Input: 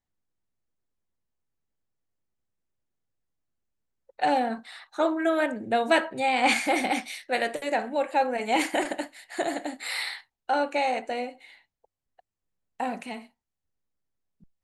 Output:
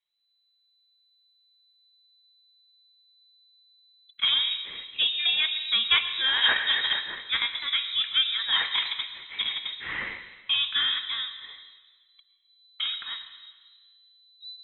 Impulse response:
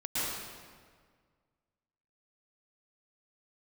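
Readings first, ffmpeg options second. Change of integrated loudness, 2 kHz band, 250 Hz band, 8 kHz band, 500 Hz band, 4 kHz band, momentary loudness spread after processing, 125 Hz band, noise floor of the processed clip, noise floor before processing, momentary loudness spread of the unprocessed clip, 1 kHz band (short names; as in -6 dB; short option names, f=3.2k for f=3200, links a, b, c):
+2.0 dB, +1.0 dB, under -20 dB, under -40 dB, -23.5 dB, +14.5 dB, 13 LU, n/a, -70 dBFS, under -85 dBFS, 13 LU, -13.0 dB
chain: -filter_complex "[0:a]asubboost=boost=7:cutoff=120,asplit=2[a][b];[1:a]atrim=start_sample=2205,asetrate=48510,aresample=44100[c];[b][c]afir=irnorm=-1:irlink=0,volume=-16dB[d];[a][d]amix=inputs=2:normalize=0,lowpass=f=3.4k:t=q:w=0.5098,lowpass=f=3.4k:t=q:w=0.6013,lowpass=f=3.4k:t=q:w=0.9,lowpass=f=3.4k:t=q:w=2.563,afreqshift=-4000"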